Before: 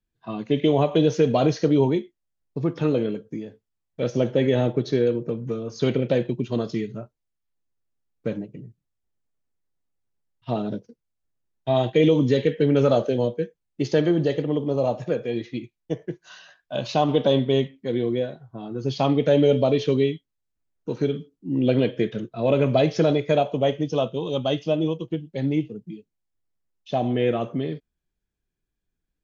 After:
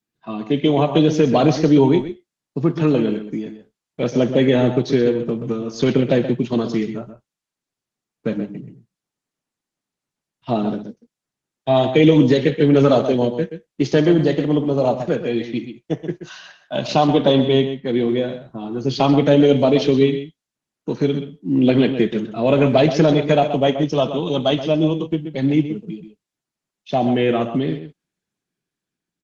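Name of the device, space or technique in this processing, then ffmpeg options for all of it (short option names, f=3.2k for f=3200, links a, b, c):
video call: -filter_complex "[0:a]asettb=1/sr,asplit=3[a][b][c];[a]atrim=end=17.174[d];[b]atrim=start=17.17:end=18.18,asetpts=PTS-STARTPTS,afade=t=in:d=0.004:c=qsin,afade=t=out:st=1.006:d=0.004:c=qsin,lowpass=5.5k[e];[c]atrim=start=18.176[f];[d][e]acrossfade=d=0.004:c1=hsin:c2=qsin[g];[g][f]acrossfade=d=0.004:c1=qsin:c2=hsin,highpass=f=140:w=0.5412,highpass=f=140:w=1.3066,equalizer=f=500:t=o:w=0.58:g=-5,asplit=2[h][i];[i]adelay=128.3,volume=-10dB,highshelf=f=4k:g=-2.89[j];[h][j]amix=inputs=2:normalize=0,dynaudnorm=f=180:g=11:m=3dB,volume=4.5dB" -ar 48000 -c:a libopus -b:a 16k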